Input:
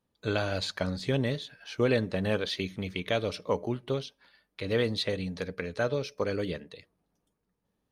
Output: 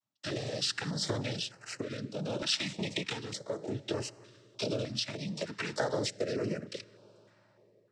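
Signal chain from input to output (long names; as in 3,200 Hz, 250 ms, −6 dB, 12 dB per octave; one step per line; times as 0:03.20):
leveller curve on the samples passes 3
cochlear-implant simulation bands 12
downward compressor, threshold −27 dBFS, peak gain reduction 13.5 dB
convolution reverb RT60 4.7 s, pre-delay 4 ms, DRR 19.5 dB
rotating-speaker cabinet horn 0.65 Hz
tilt shelving filter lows −5.5 dB, about 710 Hz
speech leveller 2 s
parametric band 2,300 Hz −4.5 dB 1.8 octaves
notch on a step sequencer 3.3 Hz 440–3,500 Hz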